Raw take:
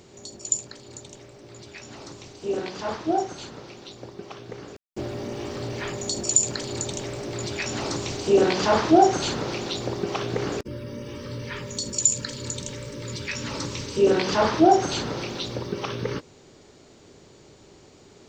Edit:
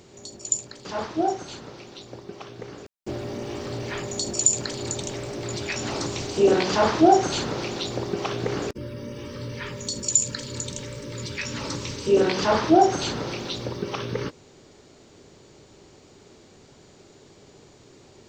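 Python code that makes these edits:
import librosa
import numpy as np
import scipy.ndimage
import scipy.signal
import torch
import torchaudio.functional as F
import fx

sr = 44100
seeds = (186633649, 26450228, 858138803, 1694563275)

y = fx.edit(x, sr, fx.cut(start_s=0.85, length_s=1.9), tone=tone)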